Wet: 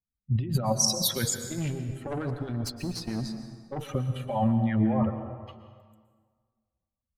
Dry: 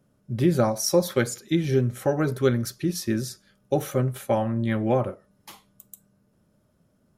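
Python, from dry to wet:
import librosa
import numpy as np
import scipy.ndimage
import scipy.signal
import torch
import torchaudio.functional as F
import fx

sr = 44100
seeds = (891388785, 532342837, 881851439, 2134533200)

y = fx.bin_expand(x, sr, power=2.0)
y = fx.env_lowpass(y, sr, base_hz=1700.0, full_db=-20.0)
y = fx.over_compress(y, sr, threshold_db=-34.0, ratio=-1.0)
y = fx.tube_stage(y, sr, drive_db=34.0, bias=0.7, at=(1.48, 3.89))
y = fx.rev_plate(y, sr, seeds[0], rt60_s=1.7, hf_ratio=0.65, predelay_ms=105, drr_db=8.0)
y = y * librosa.db_to_amplitude(7.0)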